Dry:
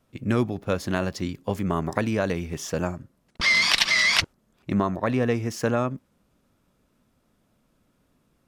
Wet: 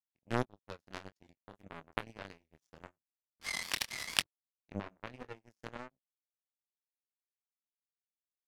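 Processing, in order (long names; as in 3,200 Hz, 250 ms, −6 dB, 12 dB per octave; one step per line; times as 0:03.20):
chorus effect 1.7 Hz, delay 19 ms, depth 7.6 ms
power curve on the samples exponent 3
level +3 dB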